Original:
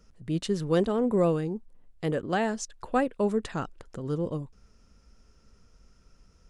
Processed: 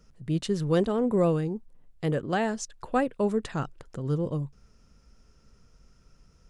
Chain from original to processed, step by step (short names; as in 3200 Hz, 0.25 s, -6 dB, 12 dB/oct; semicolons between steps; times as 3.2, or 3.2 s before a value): bell 140 Hz +7 dB 0.29 oct